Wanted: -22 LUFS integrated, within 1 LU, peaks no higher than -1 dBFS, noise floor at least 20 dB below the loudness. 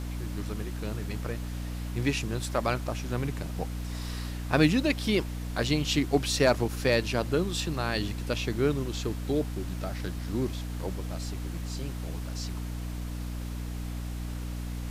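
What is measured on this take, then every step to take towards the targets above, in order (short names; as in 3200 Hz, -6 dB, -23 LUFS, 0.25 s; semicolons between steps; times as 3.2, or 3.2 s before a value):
hum 60 Hz; harmonics up to 300 Hz; hum level -32 dBFS; noise floor -35 dBFS; noise floor target -51 dBFS; loudness -30.5 LUFS; peak -10.5 dBFS; loudness target -22.0 LUFS
-> de-hum 60 Hz, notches 5; noise print and reduce 16 dB; gain +8.5 dB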